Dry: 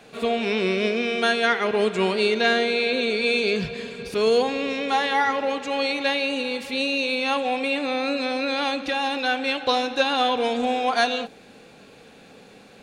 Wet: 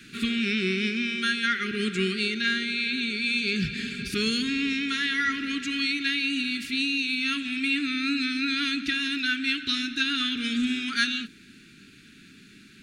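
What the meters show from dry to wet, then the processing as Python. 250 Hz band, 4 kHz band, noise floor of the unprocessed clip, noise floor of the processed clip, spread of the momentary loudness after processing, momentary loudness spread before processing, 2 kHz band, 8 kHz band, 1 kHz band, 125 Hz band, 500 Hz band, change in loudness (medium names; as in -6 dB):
+0.5 dB, 0.0 dB, -49 dBFS, -52 dBFS, 3 LU, 5 LU, -1.0 dB, +0.5 dB, -14.0 dB, +1.0 dB, -15.5 dB, -3.0 dB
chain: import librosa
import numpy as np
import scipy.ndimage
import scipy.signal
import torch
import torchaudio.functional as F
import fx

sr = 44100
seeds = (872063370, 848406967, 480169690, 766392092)

y = scipy.signal.sosfilt(scipy.signal.cheby2(4, 40, [490.0, 1000.0], 'bandstop', fs=sr, output='sos'), x)
y = fx.rider(y, sr, range_db=5, speed_s=0.5)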